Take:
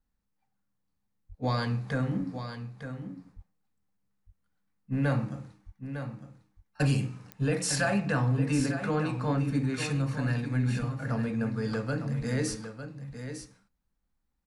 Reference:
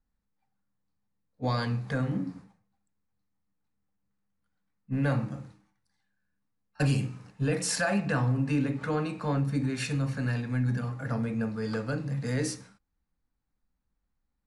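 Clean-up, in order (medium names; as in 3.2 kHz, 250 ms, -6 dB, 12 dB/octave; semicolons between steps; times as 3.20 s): de-click; de-plosive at 1.28/3.35/5.65/8.56/10.78/12.18/12.49 s; inverse comb 904 ms -9.5 dB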